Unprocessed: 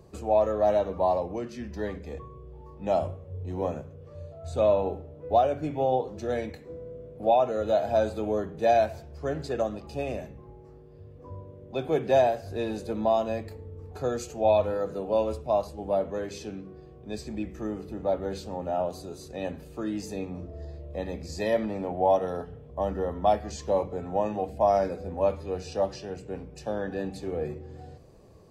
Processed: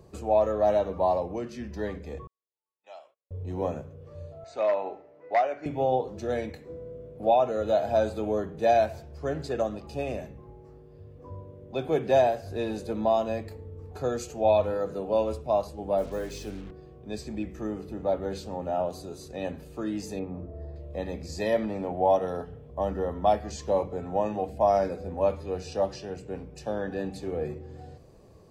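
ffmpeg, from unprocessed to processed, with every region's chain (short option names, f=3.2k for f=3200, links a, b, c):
-filter_complex "[0:a]asettb=1/sr,asplit=3[a][b][c];[a]atrim=end=2.274[d];[b]atrim=start=2.27:end=3.31,asetpts=PTS-STARTPTS,afade=t=in:d=0.004:c=qsin,afade=t=out:st=1.036:d=0.004:c=qsin,agate=range=-27dB:threshold=-36dB:ratio=16:release=100:detection=peak,highpass=450,lowpass=3.1k,aderivative[e];[c]atrim=start=3.306[f];[d][e]acrossfade=d=0.004:c1=hsin:c2=qsin[g];[g][f]acrossfade=d=0.004:c1=qsin:c2=hsin,asettb=1/sr,asplit=3[h][i][j];[h]atrim=end=4.444[k];[i]atrim=start=4.44:end=5.66,asetpts=PTS-STARTPTS,afade=t=in:d=0.004:c=qsin,afade=t=out:st=1.216:d=0.004:c=qsin,volume=15.5dB,asoftclip=hard,volume=-15.5dB,highpass=460,equalizer=f=490:t=q:w=4:g=-6,equalizer=f=2k:t=q:w=4:g=9,equalizer=f=3.4k:t=q:w=4:g=-9,lowpass=f=6k:w=0.5412,lowpass=f=6k:w=1.3066[l];[j]atrim=start=5.656[m];[k][l]acrossfade=d=0.004:c1=hsin:c2=qsin[n];[n][m]acrossfade=d=0.004:c1=qsin:c2=hsin,asettb=1/sr,asplit=3[o][p][q];[o]atrim=end=15.984[r];[p]atrim=start=15.98:end=16.71,asetpts=PTS-STARTPTS,afade=t=in:d=0.004:c=qsin,afade=t=out:st=0.726:d=0.004:c=qsin,highpass=f=110:p=1,aeval=exprs='val(0)+0.00794*(sin(2*PI*50*n/s)+sin(2*PI*2*50*n/s)/2+sin(2*PI*3*50*n/s)/3+sin(2*PI*4*50*n/s)/4+sin(2*PI*5*50*n/s)/5)':c=same,acrusher=bits=7:mix=0:aa=0.5[s];[q]atrim=start=16.706[t];[r][s]acrossfade=d=0.004:c1=hsin:c2=qsin[u];[u][t]acrossfade=d=0.004:c1=qsin:c2=hsin,asettb=1/sr,asplit=3[v][w][x];[v]atrim=end=20.194[y];[w]atrim=start=20.19:end=20.76,asetpts=PTS-STARTPTS,afade=t=in:d=0.004:c=qsin,afade=t=out:st=0.566:d=0.004:c=qsin,lowpass=1.3k,aemphasis=mode=production:type=75kf[z];[x]atrim=start=20.756[aa];[y][z]acrossfade=d=0.004:c1=hsin:c2=qsin[ab];[ab][aa]acrossfade=d=0.004:c1=qsin:c2=hsin"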